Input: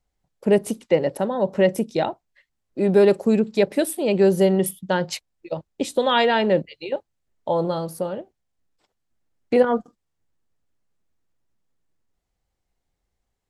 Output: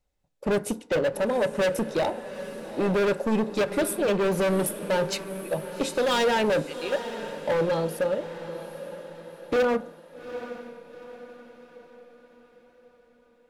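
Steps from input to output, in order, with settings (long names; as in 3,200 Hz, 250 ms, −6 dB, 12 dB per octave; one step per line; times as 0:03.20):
notch filter 680 Hz, Q 12
hollow resonant body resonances 560/2,600/3,700 Hz, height 7 dB, ringing for 25 ms
hard clipping −19.5 dBFS, distortion −5 dB
feedback delay with all-pass diffusion 816 ms, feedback 47%, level −12 dB
feedback delay network reverb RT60 0.62 s, low-frequency decay 0.8×, high-frequency decay 0.4×, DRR 13 dB
level −1.5 dB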